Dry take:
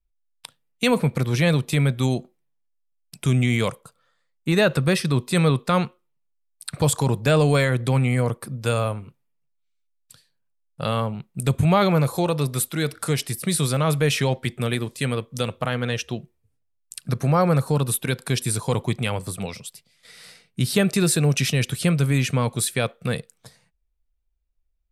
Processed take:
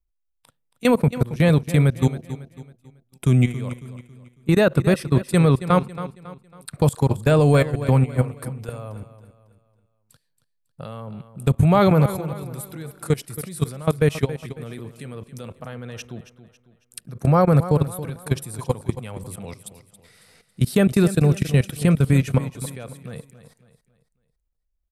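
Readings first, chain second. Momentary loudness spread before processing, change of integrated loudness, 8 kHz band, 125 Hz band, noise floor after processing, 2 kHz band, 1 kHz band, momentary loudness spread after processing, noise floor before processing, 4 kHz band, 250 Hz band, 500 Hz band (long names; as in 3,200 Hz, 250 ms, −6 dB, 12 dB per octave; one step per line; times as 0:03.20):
10 LU, +2.0 dB, −8.5 dB, +2.0 dB, −73 dBFS, −4.0 dB, 0.0 dB, 19 LU, −71 dBFS, −8.0 dB, +2.0 dB, +1.5 dB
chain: parametric band 4,100 Hz −8 dB 2.7 octaves
output level in coarse steps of 20 dB
on a send: repeating echo 275 ms, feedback 39%, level −13.5 dB
on the sum: level +5.5 dB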